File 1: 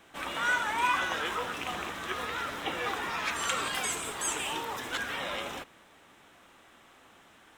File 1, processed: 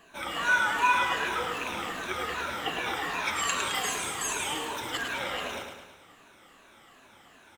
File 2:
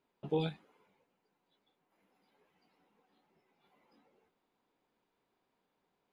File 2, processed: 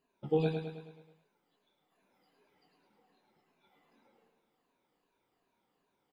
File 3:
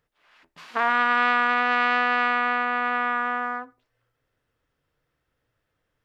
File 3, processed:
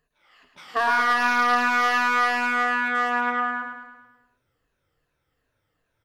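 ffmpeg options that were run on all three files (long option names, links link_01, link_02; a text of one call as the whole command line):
ffmpeg -i in.wav -af "afftfilt=real='re*pow(10,14/40*sin(2*PI*(1.5*log(max(b,1)*sr/1024/100)/log(2)-(-2.6)*(pts-256)/sr)))':imag='im*pow(10,14/40*sin(2*PI*(1.5*log(max(b,1)*sr/1024/100)/log(2)-(-2.6)*(pts-256)/sr)))':win_size=1024:overlap=0.75,asoftclip=type=hard:threshold=-12.5dB,aecho=1:1:107|214|321|428|535|642|749:0.501|0.266|0.141|0.0746|0.0395|0.021|0.0111,volume=-1.5dB" out.wav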